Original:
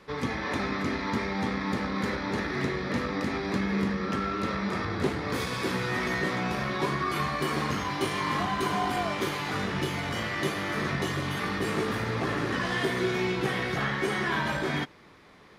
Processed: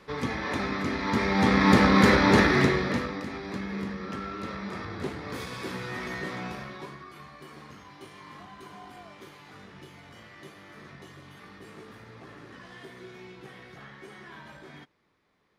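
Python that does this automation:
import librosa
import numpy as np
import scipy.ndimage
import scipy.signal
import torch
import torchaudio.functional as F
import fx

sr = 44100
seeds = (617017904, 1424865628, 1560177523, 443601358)

y = fx.gain(x, sr, db=fx.line((0.94, 0.0), (1.71, 11.5), (2.4, 11.5), (2.8, 5.0), (3.24, -6.0), (6.46, -6.0), (7.12, -18.0)))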